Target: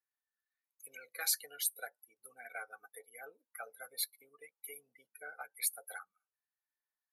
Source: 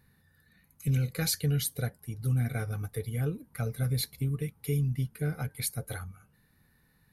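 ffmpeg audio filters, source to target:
-af "afftdn=nr=26:nf=-42,highpass=f=750:w=0.5412,highpass=f=750:w=1.3066,equalizer=f=3700:w=0.75:g=-6,volume=1.12"

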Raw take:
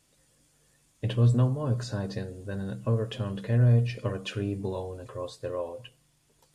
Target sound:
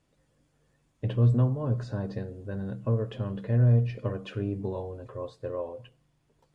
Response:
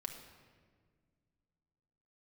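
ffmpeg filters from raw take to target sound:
-af "lowpass=f=1300:p=1"

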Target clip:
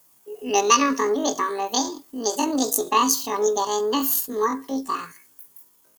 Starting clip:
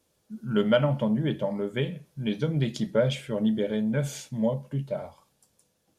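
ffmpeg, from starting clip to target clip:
-af "asetrate=85689,aresample=44100,atempo=0.514651,crystalizer=i=4:c=0,volume=1.33"

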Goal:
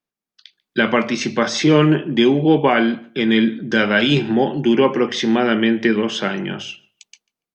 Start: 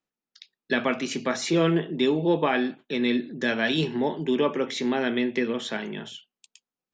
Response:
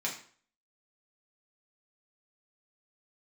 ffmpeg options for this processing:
-filter_complex "[0:a]dynaudnorm=f=200:g=5:m=3.16,asplit=2[s0][s1];[s1]adelay=131,lowpass=f=2700:p=1,volume=0.0794,asplit=2[s2][s3];[s3]adelay=131,lowpass=f=2700:p=1,volume=0.2[s4];[s0][s2][s4]amix=inputs=3:normalize=0,asetrate=40517,aresample=44100"

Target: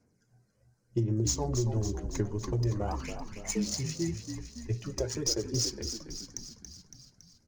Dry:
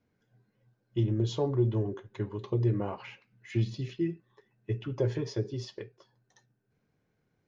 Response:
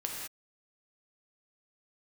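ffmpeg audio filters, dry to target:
-filter_complex "[0:a]asettb=1/sr,asplit=3[s0][s1][s2];[s0]atrim=end=2.894[s3];[s1]atrim=start=2.89:end=3.74,asetpts=PTS-STARTPTS,afade=t=in:d=0.004:c=qsin,afade=t=out:st=0.846:d=0.004:c=qsin,afreqshift=91[s4];[s2]atrim=start=3.736[s5];[s3][s4]acrossfade=d=0.004:c1=hsin:c2=qsin[s6];[s6][s5]acrossfade=d=0.004:c1=qsin:c2=hsin,aphaser=in_gain=1:out_gain=1:delay=1.7:decay=0.48:speed=0.92:type=sinusoidal,aexciter=amount=15.8:drive=9.6:freq=5500,acompressor=threshold=0.0562:ratio=6,asettb=1/sr,asplit=3[s7][s8][s9];[s7]atrim=end=4.904[s10];[s8]atrim=start=4.9:end=5.54,asetpts=PTS-STARTPTS,afade=t=in:d=0.004:c=qsin,afade=t=out:st=0.636:d=0.004:c=qsin,highpass=200[s11];[s9]atrim=start=5.536[s12];[s10][s11]acrossfade=d=0.004:c1=hsin:c2=qsin[s13];[s13][s12]acrossfade=d=0.004:c1=qsin:c2=hsin,adynamicsmooth=sensitivity=7:basefreq=3100,asplit=9[s14][s15][s16][s17][s18][s19][s20][s21][s22];[s15]adelay=280,afreqshift=-49,volume=0.398[s23];[s16]adelay=560,afreqshift=-98,volume=0.24[s24];[s17]adelay=840,afreqshift=-147,volume=0.143[s25];[s18]adelay=1120,afreqshift=-196,volume=0.0861[s26];[s19]adelay=1400,afreqshift=-245,volume=0.0519[s27];[s20]adelay=1680,afreqshift=-294,volume=0.0309[s28];[s21]adelay=1960,afreqshift=-343,volume=0.0186[s29];[s22]adelay=2240,afreqshift=-392,volume=0.0111[s30];[s14][s23][s24][s25][s26][s27][s28][s29][s30]amix=inputs=9:normalize=0"

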